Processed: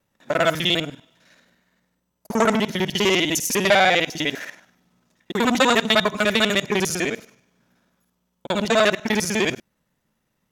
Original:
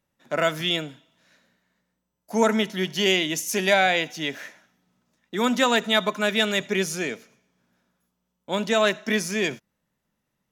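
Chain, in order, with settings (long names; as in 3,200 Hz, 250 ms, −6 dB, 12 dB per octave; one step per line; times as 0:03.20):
reversed piece by piece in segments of 50 ms
saturating transformer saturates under 1,500 Hz
level +5.5 dB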